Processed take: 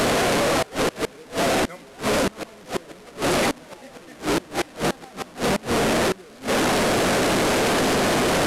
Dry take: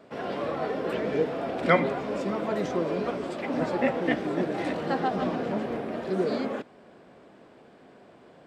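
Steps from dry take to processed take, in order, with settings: delta modulation 64 kbps, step -19.5 dBFS; flipped gate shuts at -16 dBFS, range -25 dB; gain +5.5 dB

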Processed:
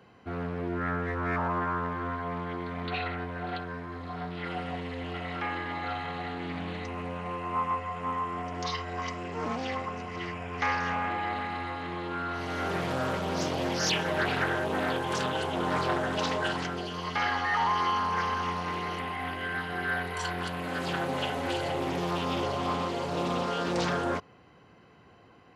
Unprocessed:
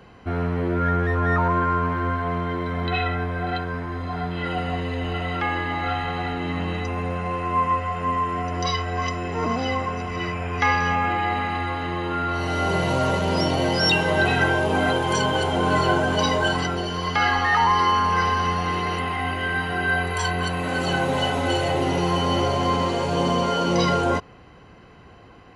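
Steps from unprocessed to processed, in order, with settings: HPF 100 Hz 12 dB/oct; Doppler distortion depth 0.4 ms; gain -8 dB

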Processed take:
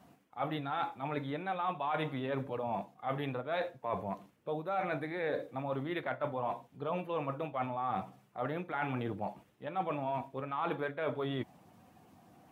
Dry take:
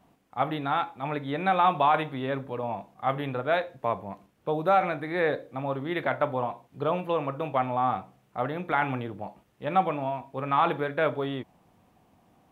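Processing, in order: bin magnitudes rounded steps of 15 dB; HPF 89 Hz; reverse; compressor 6:1, threshold -35 dBFS, peak gain reduction 16.5 dB; reverse; gain +2.5 dB

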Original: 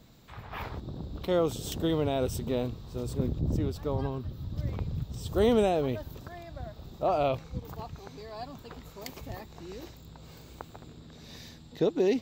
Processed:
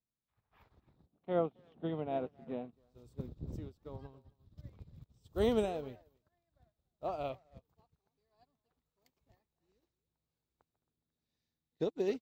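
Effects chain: crackle 19/s -43 dBFS; 1.06–2.73 speaker cabinet 160–2800 Hz, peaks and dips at 160 Hz +6 dB, 240 Hz +5 dB, 720 Hz +8 dB; speakerphone echo 0.27 s, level -11 dB; upward expander 2.5:1, over -45 dBFS; gain -5.5 dB

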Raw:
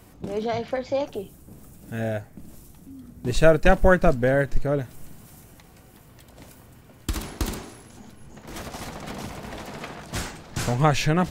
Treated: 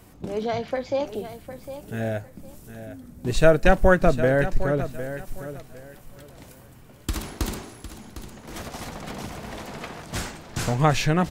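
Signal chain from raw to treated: feedback echo 0.756 s, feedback 24%, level -12 dB

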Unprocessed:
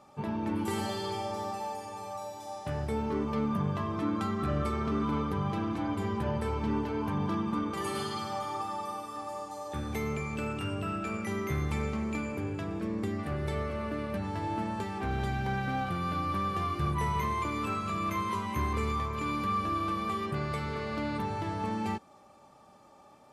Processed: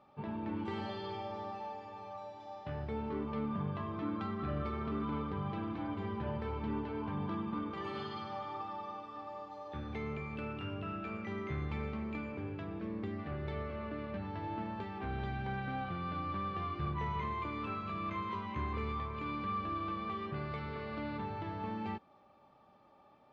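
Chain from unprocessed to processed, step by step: LPF 3900 Hz 24 dB/oct; gain -6.5 dB

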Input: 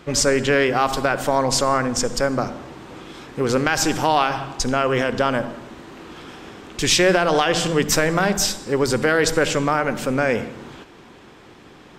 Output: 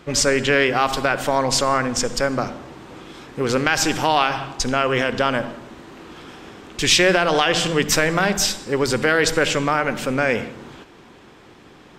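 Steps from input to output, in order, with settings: dynamic EQ 2700 Hz, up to +5 dB, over -36 dBFS, Q 0.81; gain -1 dB

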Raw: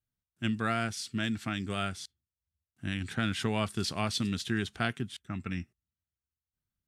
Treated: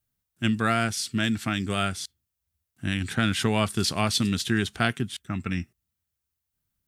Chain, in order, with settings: high shelf 9800 Hz +8.5 dB; gain +6.5 dB

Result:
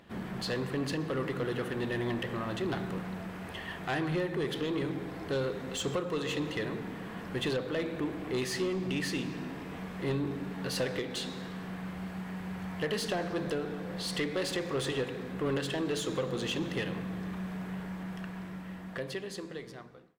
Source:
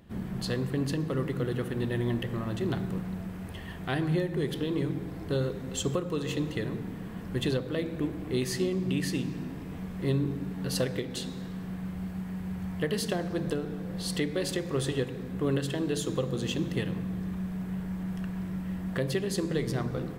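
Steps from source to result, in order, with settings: ending faded out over 2.66 s; overdrive pedal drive 17 dB, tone 3600 Hz, clips at -18.5 dBFS; gain -4.5 dB

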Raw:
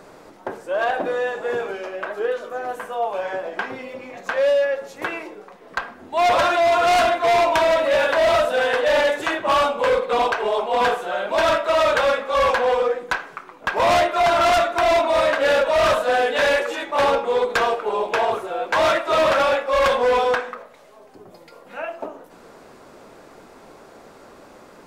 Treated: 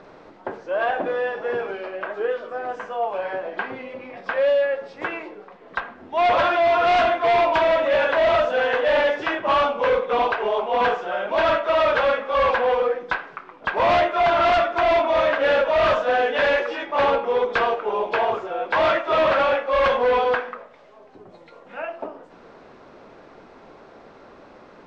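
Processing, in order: nonlinear frequency compression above 3100 Hz 1.5:1; LPF 4000 Hz 12 dB/oct; gain -1 dB

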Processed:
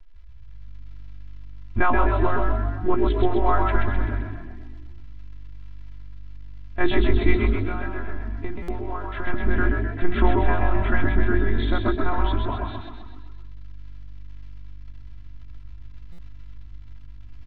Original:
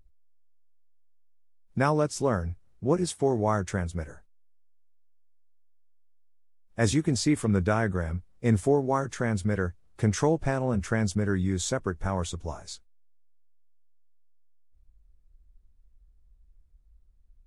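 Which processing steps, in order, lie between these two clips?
G.711 law mismatch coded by mu; monotone LPC vocoder at 8 kHz 180 Hz; 7.42–9.27 compressor 6:1, threshold -31 dBFS, peak gain reduction 14.5 dB; crackle 180/s -49 dBFS; air absorption 240 m; notches 60/120/180/240/300/360 Hz; frequency-shifting echo 0.129 s, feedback 52%, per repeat +49 Hz, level -4 dB; AGC gain up to 6 dB; bell 540 Hz -10 dB 0.85 oct; comb 3 ms, depth 93%; stuck buffer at 8.62/16.12, samples 256, times 10

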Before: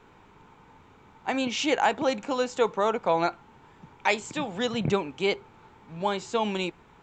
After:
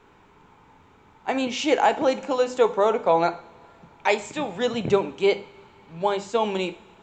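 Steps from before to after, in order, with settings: notches 50/100/150/200/250 Hz; two-slope reverb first 0.5 s, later 3 s, from -18 dB, DRR 10.5 dB; dynamic EQ 510 Hz, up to +6 dB, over -35 dBFS, Q 0.92

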